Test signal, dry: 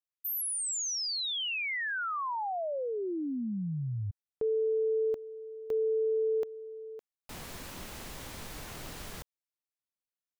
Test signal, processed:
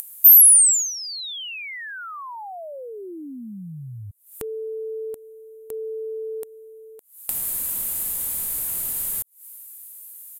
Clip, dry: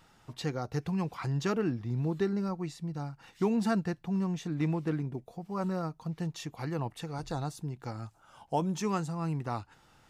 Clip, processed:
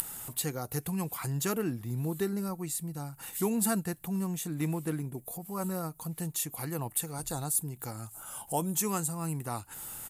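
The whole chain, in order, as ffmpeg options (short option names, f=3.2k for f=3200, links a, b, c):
-filter_complex "[0:a]aemphasis=mode=production:type=cd,asplit=2[a][b];[b]acompressor=mode=upward:threshold=-38dB:ratio=4:attack=16:release=149:knee=2.83:detection=peak,volume=2dB[c];[a][c]amix=inputs=2:normalize=0,aexciter=amount=5.4:drive=9.2:freq=7.9k,aresample=32000,aresample=44100,volume=-8.5dB"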